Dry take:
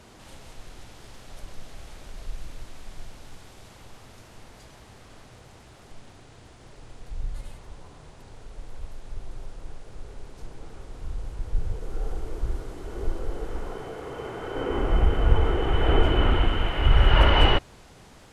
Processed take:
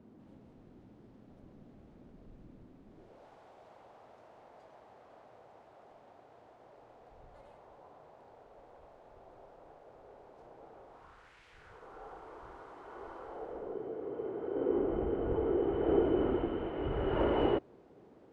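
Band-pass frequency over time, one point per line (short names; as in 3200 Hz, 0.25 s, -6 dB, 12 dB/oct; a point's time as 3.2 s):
band-pass, Q 1.8
2.85 s 240 Hz
3.26 s 670 Hz
10.84 s 670 Hz
11.45 s 2500 Hz
11.87 s 1000 Hz
13.24 s 1000 Hz
13.77 s 370 Hz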